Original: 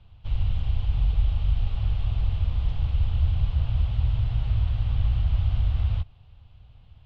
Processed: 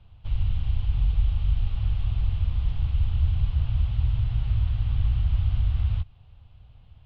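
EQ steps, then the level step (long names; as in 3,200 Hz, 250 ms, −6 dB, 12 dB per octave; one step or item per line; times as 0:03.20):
dynamic equaliser 560 Hz, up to −6 dB, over −50 dBFS, Q 0.97
high-frequency loss of the air 81 metres
0.0 dB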